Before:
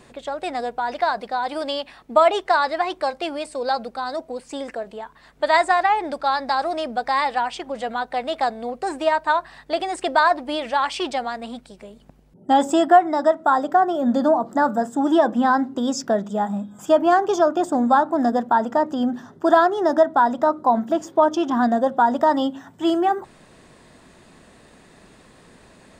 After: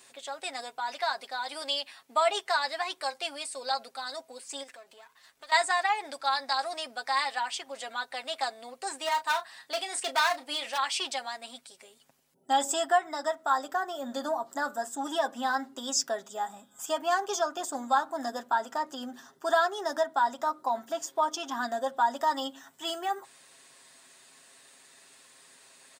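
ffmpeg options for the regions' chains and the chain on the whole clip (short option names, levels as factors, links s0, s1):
-filter_complex "[0:a]asettb=1/sr,asplit=3[s0][s1][s2];[s0]atrim=end=4.634[s3];[s1]atrim=start=4.63:end=5.52,asetpts=PTS-STARTPTS,afade=t=in:d=0.004:c=qsin,afade=t=out:st=0.886:d=0.004:c=qsin,aeval=exprs='if(lt(val(0),0),0.447*val(0),val(0))':c=same,asubboost=boost=9:cutoff=81,acompressor=threshold=0.0112:ratio=2:attack=3.2:release=140:knee=1:detection=peak[s4];[s2]atrim=start=5.516[s5];[s3][s4]acrossfade=d=0.004:c1=hsin:c2=qsin[s6];[s6][s5]acrossfade=d=0.004:c1=qsin:c2=hsin,asettb=1/sr,asplit=3[s7][s8][s9];[s7]atrim=end=9.014[s10];[s8]atrim=start=9.01:end=10.78,asetpts=PTS-STARTPTS,afade=t=in:d=0.004:c=qsin,afade=t=out:st=1.766:d=0.004:c=qsin,aeval=exprs='clip(val(0),-1,0.141)':c=same,asplit=2[s11][s12];[s12]adelay=31,volume=0.316[s13];[s11][s13]amix=inputs=2:normalize=0,atrim=end_sample=78057[s14];[s9]atrim=start=10.776[s15];[s10][s14]acrossfade=d=0.004:c1=hsin:c2=qsin[s16];[s16][s15]acrossfade=d=0.004:c1=qsin:c2=hsin,highpass=f=1500:p=1,highshelf=f=4700:g=11.5,aecho=1:1:7.4:0.55,volume=0.531"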